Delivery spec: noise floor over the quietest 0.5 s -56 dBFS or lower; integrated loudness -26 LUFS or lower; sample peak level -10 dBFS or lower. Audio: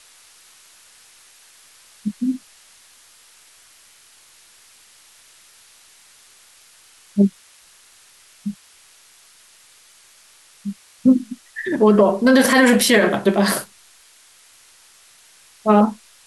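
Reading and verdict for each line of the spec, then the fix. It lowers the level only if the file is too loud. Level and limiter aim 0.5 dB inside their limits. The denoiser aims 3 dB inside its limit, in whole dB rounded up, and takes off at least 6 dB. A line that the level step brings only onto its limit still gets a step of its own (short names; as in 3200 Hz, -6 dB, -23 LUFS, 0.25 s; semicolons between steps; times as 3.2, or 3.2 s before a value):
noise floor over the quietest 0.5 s -51 dBFS: fail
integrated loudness -17.5 LUFS: fail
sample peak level -4.5 dBFS: fail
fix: gain -9 dB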